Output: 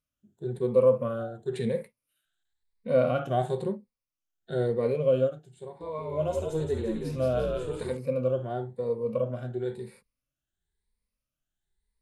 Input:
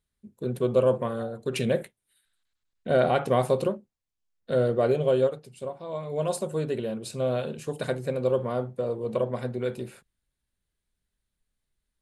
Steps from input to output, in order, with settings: moving spectral ripple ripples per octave 0.91, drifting +0.98 Hz, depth 12 dB; 5.63–7.97 frequency-shifting echo 0.174 s, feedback 50%, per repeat -69 Hz, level -3 dB; harmonic-percussive split percussive -12 dB; gain -2.5 dB

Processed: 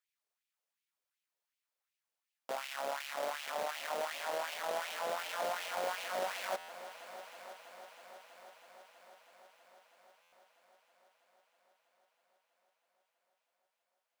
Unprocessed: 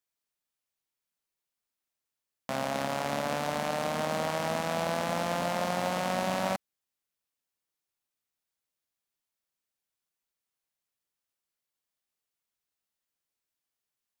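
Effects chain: half-waves squared off; limiter -24.5 dBFS, peak gain reduction 9.5 dB; LFO high-pass sine 2.7 Hz 490–2600 Hz; multi-head echo 0.323 s, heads all three, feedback 66%, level -19 dB; stuck buffer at 6.58/10.22, samples 512, times 8; gain -7 dB

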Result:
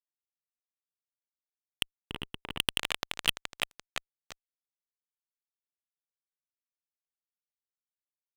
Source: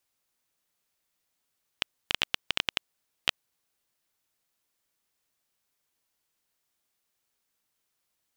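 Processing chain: tape echo 0.342 s, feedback 80%, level -14 dB, low-pass 2300 Hz; fuzz box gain 34 dB, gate -40 dBFS; 1.97–2.6 EQ curve 410 Hz 0 dB, 600 Hz -8 dB, 950 Hz -3 dB, 6500 Hz -22 dB

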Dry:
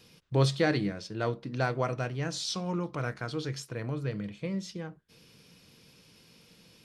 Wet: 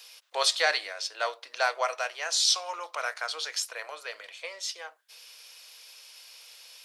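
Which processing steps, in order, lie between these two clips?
steep high-pass 590 Hz 36 dB/oct; high shelf 2500 Hz +9 dB; gain +4 dB

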